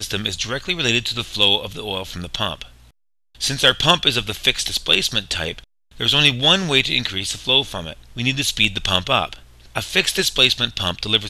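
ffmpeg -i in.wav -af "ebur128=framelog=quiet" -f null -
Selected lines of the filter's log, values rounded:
Integrated loudness:
  I:         -18.0 LUFS
  Threshold: -28.5 LUFS
Loudness range:
  LRA:         2.9 LU
  Threshold: -38.4 LUFS
  LRA low:   -20.0 LUFS
  LRA high:  -17.0 LUFS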